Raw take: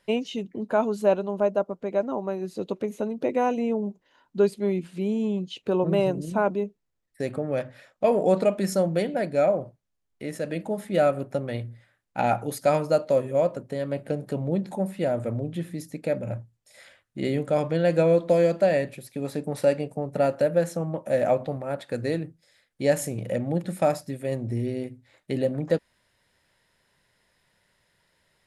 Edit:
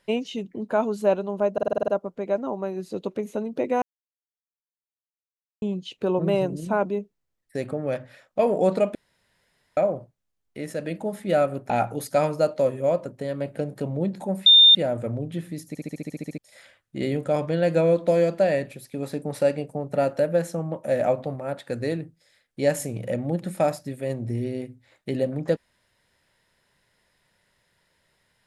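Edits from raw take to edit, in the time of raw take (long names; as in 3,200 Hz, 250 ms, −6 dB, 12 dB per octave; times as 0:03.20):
0:01.53: stutter 0.05 s, 8 plays
0:03.47–0:05.27: silence
0:08.60–0:09.42: fill with room tone
0:11.35–0:12.21: remove
0:14.97: insert tone 3,620 Hz −9 dBFS 0.29 s
0:15.90: stutter in place 0.07 s, 10 plays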